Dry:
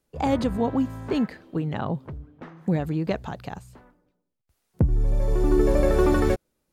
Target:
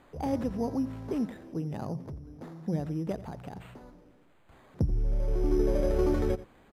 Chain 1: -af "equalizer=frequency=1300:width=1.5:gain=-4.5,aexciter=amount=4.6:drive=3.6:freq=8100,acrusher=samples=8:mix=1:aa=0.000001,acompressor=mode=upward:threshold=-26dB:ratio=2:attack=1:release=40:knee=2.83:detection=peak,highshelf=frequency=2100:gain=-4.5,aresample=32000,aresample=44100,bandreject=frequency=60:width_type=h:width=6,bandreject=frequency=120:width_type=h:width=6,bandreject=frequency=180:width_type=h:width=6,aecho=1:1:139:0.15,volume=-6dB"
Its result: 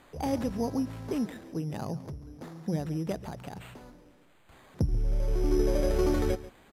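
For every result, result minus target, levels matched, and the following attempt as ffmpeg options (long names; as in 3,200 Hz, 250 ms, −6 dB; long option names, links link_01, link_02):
echo 52 ms late; 4,000 Hz band +6.5 dB
-af "equalizer=frequency=1300:width=1.5:gain=-4.5,aexciter=amount=4.6:drive=3.6:freq=8100,acrusher=samples=8:mix=1:aa=0.000001,acompressor=mode=upward:threshold=-26dB:ratio=2:attack=1:release=40:knee=2.83:detection=peak,highshelf=frequency=2100:gain=-4.5,aresample=32000,aresample=44100,bandreject=frequency=60:width_type=h:width=6,bandreject=frequency=120:width_type=h:width=6,bandreject=frequency=180:width_type=h:width=6,aecho=1:1:87:0.15,volume=-6dB"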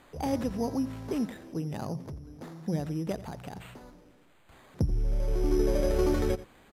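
4,000 Hz band +6.5 dB
-af "equalizer=frequency=1300:width=1.5:gain=-4.5,aexciter=amount=4.6:drive=3.6:freq=8100,acrusher=samples=8:mix=1:aa=0.000001,acompressor=mode=upward:threshold=-26dB:ratio=2:attack=1:release=40:knee=2.83:detection=peak,highshelf=frequency=2100:gain=-13,aresample=32000,aresample=44100,bandreject=frequency=60:width_type=h:width=6,bandreject=frequency=120:width_type=h:width=6,bandreject=frequency=180:width_type=h:width=6,aecho=1:1:87:0.15,volume=-6dB"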